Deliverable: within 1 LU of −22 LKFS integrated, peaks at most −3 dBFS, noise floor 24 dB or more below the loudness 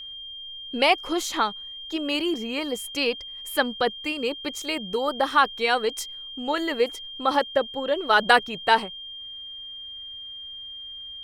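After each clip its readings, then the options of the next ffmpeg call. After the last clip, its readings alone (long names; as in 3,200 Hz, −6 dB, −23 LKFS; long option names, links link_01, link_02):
interfering tone 3,200 Hz; level of the tone −36 dBFS; integrated loudness −24.5 LKFS; sample peak −4.0 dBFS; target loudness −22.0 LKFS
→ -af "bandreject=frequency=3200:width=30"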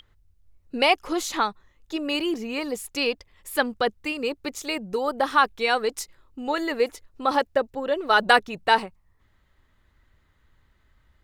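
interfering tone none found; integrated loudness −24.5 LKFS; sample peak −4.0 dBFS; target loudness −22.0 LKFS
→ -af "volume=2.5dB,alimiter=limit=-3dB:level=0:latency=1"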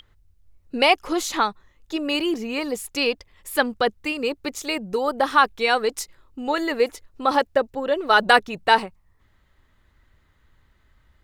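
integrated loudness −22.5 LKFS; sample peak −3.0 dBFS; background noise floor −62 dBFS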